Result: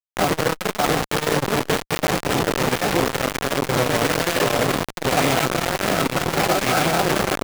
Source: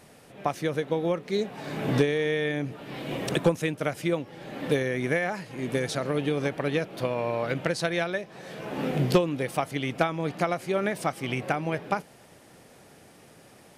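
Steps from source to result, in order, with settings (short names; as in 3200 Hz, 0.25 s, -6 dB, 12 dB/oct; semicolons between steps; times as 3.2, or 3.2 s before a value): spectral swells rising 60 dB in 0.74 s; low-pass opened by the level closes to 770 Hz, open at -18 dBFS; high shelf 3100 Hz -11 dB; swung echo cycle 1.422 s, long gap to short 3:1, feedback 55%, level -6 dB; time stretch by phase-locked vocoder 0.54×; rotary speaker horn 0.85 Hz; negative-ratio compressor -32 dBFS, ratio -1; small resonant body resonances 750/1300 Hz, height 7 dB, ringing for 55 ms; bit-crush 5-bit; maximiser +27 dB; core saturation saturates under 390 Hz; gain -9 dB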